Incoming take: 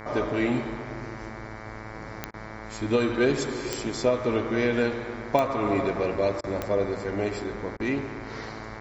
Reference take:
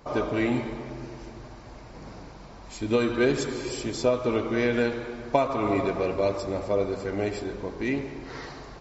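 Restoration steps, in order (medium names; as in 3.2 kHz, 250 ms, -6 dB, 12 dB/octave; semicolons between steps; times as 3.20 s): de-click; de-hum 108.8 Hz, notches 21; interpolate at 2.31/6.41/7.77 s, 27 ms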